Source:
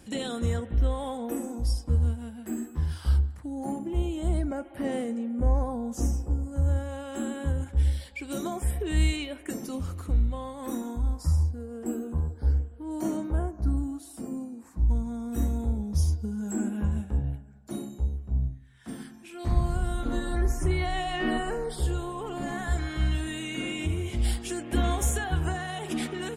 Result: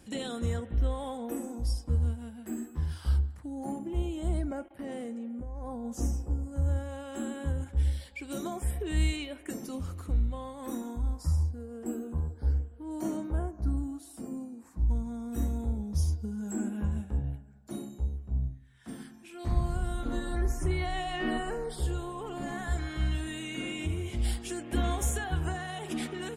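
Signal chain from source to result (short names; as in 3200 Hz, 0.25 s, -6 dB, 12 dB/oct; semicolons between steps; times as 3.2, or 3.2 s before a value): 4.66–5.85 level quantiser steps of 17 dB; gain -3.5 dB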